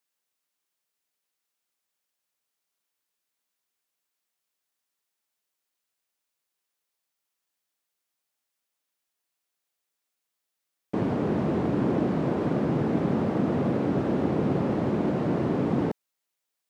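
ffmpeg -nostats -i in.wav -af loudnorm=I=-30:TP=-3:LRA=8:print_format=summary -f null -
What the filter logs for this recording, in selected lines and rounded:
Input Integrated:    -26.4 LUFS
Input True Peak:     -12.0 dBTP
Input LRA:             4.6 LU
Input Threshold:     -36.6 LUFS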